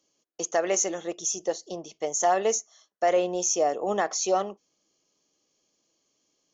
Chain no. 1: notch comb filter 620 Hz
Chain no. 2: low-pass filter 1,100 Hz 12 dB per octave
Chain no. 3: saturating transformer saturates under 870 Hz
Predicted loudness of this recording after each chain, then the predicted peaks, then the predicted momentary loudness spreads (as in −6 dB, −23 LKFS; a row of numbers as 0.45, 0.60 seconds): −28.0, −28.5, −27.5 LKFS; −13.5, −13.5, −13.0 dBFS; 10, 13, 10 LU